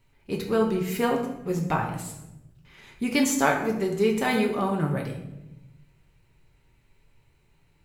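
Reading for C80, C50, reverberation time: 9.0 dB, 6.5 dB, 0.95 s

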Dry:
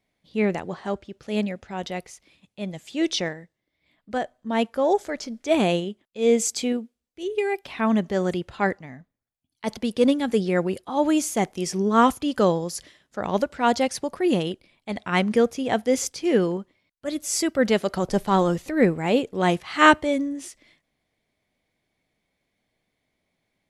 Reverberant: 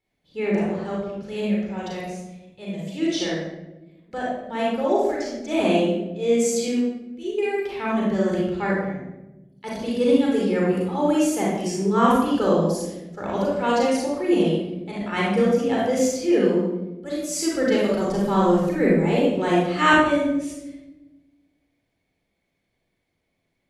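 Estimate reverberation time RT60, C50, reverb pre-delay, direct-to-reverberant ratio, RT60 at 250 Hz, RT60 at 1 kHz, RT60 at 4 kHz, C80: 1.0 s, −1.5 dB, 34 ms, −4.5 dB, 1.7 s, 0.80 s, 0.65 s, 3.0 dB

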